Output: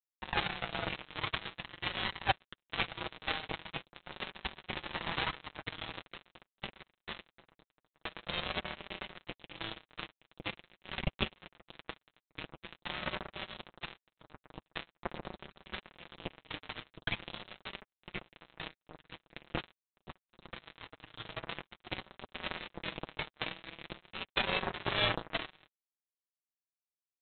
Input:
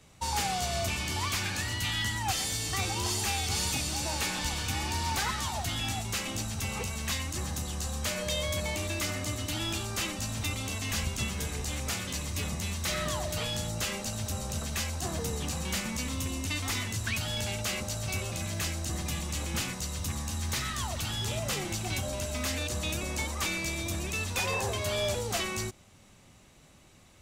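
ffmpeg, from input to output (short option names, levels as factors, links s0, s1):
-af "afftfilt=real='re*gte(hypot(re,im),0.0126)':imag='im*gte(hypot(re,im),0.0126)':win_size=1024:overlap=0.75,aresample=8000,acrusher=bits=3:mix=0:aa=0.5,aresample=44100,flanger=delay=5.1:depth=1.5:regen=-22:speed=0.45:shape=triangular,volume=2.51"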